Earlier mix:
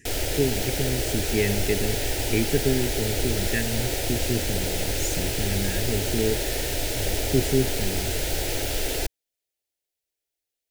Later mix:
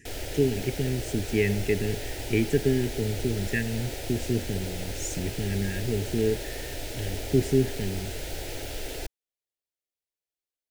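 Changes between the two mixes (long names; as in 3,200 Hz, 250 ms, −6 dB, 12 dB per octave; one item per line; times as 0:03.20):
background −7.5 dB
master: add high-shelf EQ 4,800 Hz −4 dB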